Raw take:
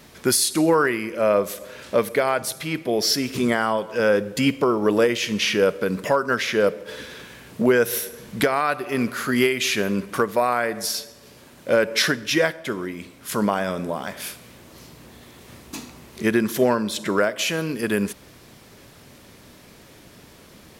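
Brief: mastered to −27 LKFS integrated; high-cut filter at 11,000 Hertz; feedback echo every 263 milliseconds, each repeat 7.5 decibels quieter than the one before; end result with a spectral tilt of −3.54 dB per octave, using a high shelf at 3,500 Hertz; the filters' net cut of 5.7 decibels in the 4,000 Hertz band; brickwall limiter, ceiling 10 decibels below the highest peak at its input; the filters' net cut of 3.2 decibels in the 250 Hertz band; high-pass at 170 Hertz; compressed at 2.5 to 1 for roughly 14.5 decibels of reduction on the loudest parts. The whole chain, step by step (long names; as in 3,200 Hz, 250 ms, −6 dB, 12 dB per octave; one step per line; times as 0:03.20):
high-pass filter 170 Hz
low-pass filter 11,000 Hz
parametric band 250 Hz −3 dB
high-shelf EQ 3,500 Hz −5 dB
parametric band 4,000 Hz −4 dB
downward compressor 2.5 to 1, threshold −38 dBFS
brickwall limiter −28.5 dBFS
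repeating echo 263 ms, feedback 42%, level −7.5 dB
level +11.5 dB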